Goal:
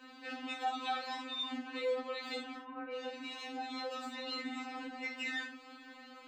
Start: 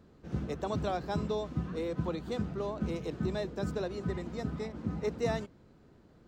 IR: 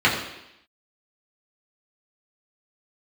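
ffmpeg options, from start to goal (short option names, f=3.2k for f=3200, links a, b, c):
-filter_complex "[0:a]acompressor=threshold=-38dB:ratio=6,flanger=delay=5.3:depth=1.6:regen=-58:speed=0.99:shape=triangular,alimiter=level_in=18dB:limit=-24dB:level=0:latency=1:release=178,volume=-18dB,tiltshelf=f=1.1k:g=-9.5,asettb=1/sr,asplit=3[a][b][c];[a]atrim=end=2.564[d];[b]atrim=start=2.56:end=4.69,asetpts=PTS-STARTPTS,afade=t=in:d=0.004:c=qsin,afade=t=out:st=2.126:d=0.004:c=qsin,acrossover=split=2000[e][f];[f]adelay=360[g];[e][g]amix=inputs=2:normalize=0,atrim=end_sample=93933[h];[c]atrim=start=4.686[i];[d][h]acrossfade=d=0.004:c1=hsin:c2=qsin[j];[j][i]acrossfade=d=0.004:c1=qsin:c2=hsin[k];[1:a]atrim=start_sample=2205,atrim=end_sample=3969[l];[k][l]afir=irnorm=-1:irlink=0,afftfilt=real='re*3.46*eq(mod(b,12),0)':imag='im*3.46*eq(mod(b,12),0)':win_size=2048:overlap=0.75,volume=1dB"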